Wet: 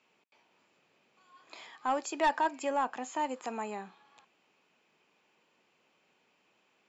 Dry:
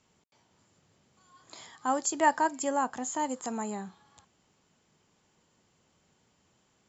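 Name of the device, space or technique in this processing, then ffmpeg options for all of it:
intercom: -af "highpass=320,lowpass=4000,equalizer=f=2500:t=o:w=0.26:g=11,asoftclip=type=tanh:threshold=0.0944"

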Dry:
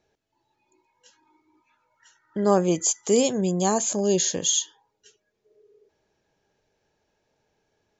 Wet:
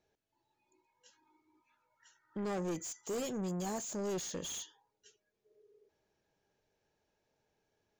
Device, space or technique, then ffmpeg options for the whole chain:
saturation between pre-emphasis and de-emphasis: -af "highshelf=f=3900:g=10.5,asoftclip=type=tanh:threshold=0.0562,highshelf=f=3900:g=-10.5,volume=0.398"

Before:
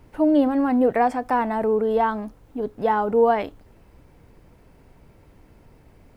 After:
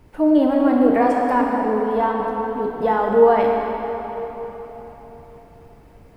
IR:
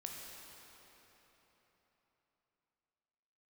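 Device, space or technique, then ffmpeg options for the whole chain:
cathedral: -filter_complex "[0:a]asettb=1/sr,asplit=3[s0][s1][s2];[s0]atrim=end=1.414[s3];[s1]atrim=start=1.41:end=2.2,asetpts=PTS-STARTPTS,afade=t=in:d=0.004:c=qsin,afade=t=out:st=0.786:d=0.004:c=qsin,agate=range=0.0224:threshold=0.141:ratio=3:detection=peak[s4];[s2]atrim=start=2.196[s5];[s3][s4]acrossfade=d=0.004:c1=hsin:c2=qsin[s6];[s6][s5]acrossfade=d=0.004:c1=qsin:c2=hsin[s7];[1:a]atrim=start_sample=2205[s8];[s7][s8]afir=irnorm=-1:irlink=0,volume=1.88"

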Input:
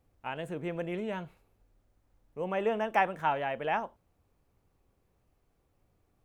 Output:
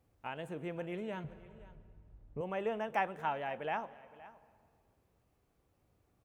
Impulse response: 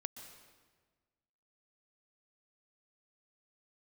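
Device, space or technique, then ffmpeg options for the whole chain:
ducked reverb: -filter_complex "[0:a]asettb=1/sr,asplit=3[s0][s1][s2];[s0]atrim=end=1.244[s3];[s1]atrim=start=1.24:end=2.41,asetpts=PTS-STARTPTS,afade=t=in:d=0.004:c=qsin,afade=t=out:st=1.166:d=0.004:c=qsin,aemphasis=mode=reproduction:type=riaa[s4];[s2]atrim=start=2.406[s5];[s3][s4]acrossfade=d=0.004:c1=hsin:c2=qsin[s6];[s6][s5]acrossfade=d=0.004:c1=qsin:c2=hsin,asplit=3[s7][s8][s9];[1:a]atrim=start_sample=2205[s10];[s8][s10]afir=irnorm=-1:irlink=0[s11];[s9]apad=whole_len=275521[s12];[s11][s12]sidechaincompress=threshold=0.00708:ratio=8:attack=30:release=639,volume=1.58[s13];[s7][s13]amix=inputs=2:normalize=0,highpass=46,aecho=1:1:519:0.119,volume=0.422"

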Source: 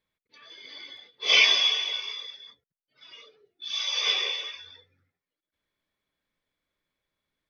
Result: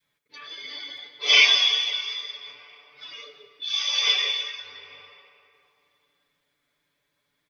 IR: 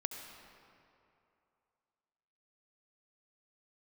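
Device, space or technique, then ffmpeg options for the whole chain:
ducked reverb: -filter_complex "[0:a]asplit=3[s0][s1][s2];[1:a]atrim=start_sample=2205[s3];[s1][s3]afir=irnorm=-1:irlink=0[s4];[s2]apad=whole_len=330580[s5];[s4][s5]sidechaincompress=threshold=0.00562:ratio=5:attack=8.6:release=475,volume=1.33[s6];[s0][s6]amix=inputs=2:normalize=0,highpass=f=120:p=1,adynamicequalizer=threshold=0.00501:dfrequency=550:dqfactor=0.74:tfrequency=550:tqfactor=0.74:attack=5:release=100:ratio=0.375:range=2.5:mode=cutabove:tftype=bell,equalizer=f=300:w=0.46:g=-2.5,aecho=1:1:6.9:0.92"

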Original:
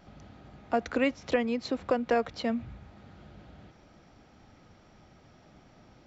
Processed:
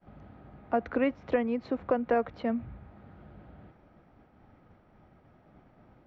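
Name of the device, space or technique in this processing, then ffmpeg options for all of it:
hearing-loss simulation: -af "lowpass=1800,agate=range=0.0224:threshold=0.002:ratio=3:detection=peak"

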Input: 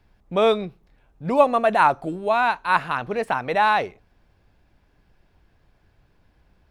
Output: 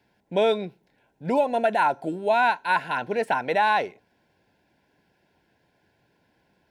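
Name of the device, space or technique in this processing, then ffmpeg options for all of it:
PA system with an anti-feedback notch: -af "highpass=180,asuperstop=centerf=1200:order=20:qfactor=4.5,alimiter=limit=0.251:level=0:latency=1:release=205"

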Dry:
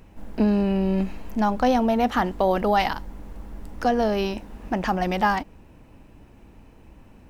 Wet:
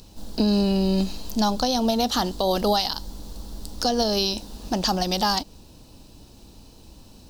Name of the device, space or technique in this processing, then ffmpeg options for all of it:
over-bright horn tweeter: -af "highshelf=f=3000:t=q:w=3:g=12.5,alimiter=limit=0.251:level=0:latency=1:release=159,volume=1.12"

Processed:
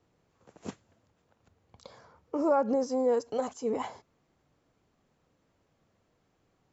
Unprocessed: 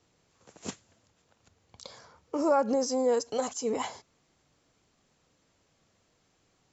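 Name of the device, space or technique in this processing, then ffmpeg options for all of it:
through cloth: -af "highshelf=f=2700:g=-13.5"

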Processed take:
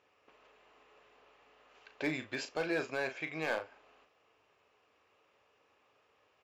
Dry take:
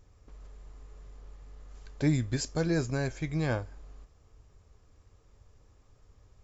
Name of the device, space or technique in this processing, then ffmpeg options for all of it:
megaphone: -filter_complex "[0:a]highpass=530,lowpass=3100,equalizer=f=2700:t=o:w=0.42:g=10,asoftclip=type=hard:threshold=0.0422,asplit=2[s0][s1];[s1]adelay=38,volume=0.355[s2];[s0][s2]amix=inputs=2:normalize=0,volume=1.19"

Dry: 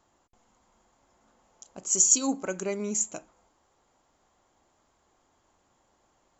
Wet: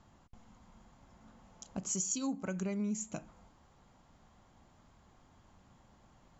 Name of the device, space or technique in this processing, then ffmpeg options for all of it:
jukebox: -af "lowpass=5400,lowshelf=f=260:t=q:w=1.5:g=9,acompressor=threshold=0.0126:ratio=4,volume=1.41"

